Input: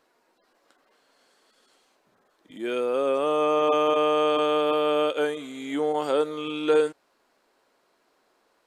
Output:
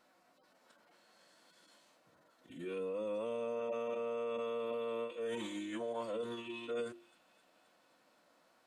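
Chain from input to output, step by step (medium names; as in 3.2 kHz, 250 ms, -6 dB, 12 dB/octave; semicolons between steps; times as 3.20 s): formant-preserving pitch shift -4.5 st; reverse; compression 8:1, threshold -35 dBFS, peak gain reduction 17.5 dB; reverse; hum notches 50/100/150/200/250/300/350 Hz; comb of notches 410 Hz; on a send: feedback echo behind a high-pass 262 ms, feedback 67%, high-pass 2 kHz, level -21.5 dB; on the sum: endings held to a fixed fall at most 130 dB/s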